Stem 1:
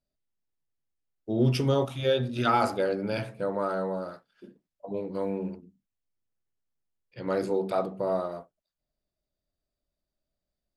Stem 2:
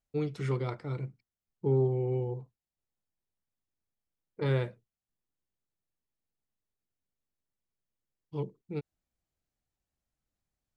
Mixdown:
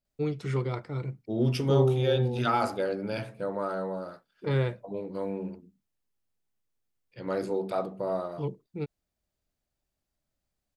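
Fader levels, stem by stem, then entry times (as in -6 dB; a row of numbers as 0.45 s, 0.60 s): -2.5 dB, +2.0 dB; 0.00 s, 0.05 s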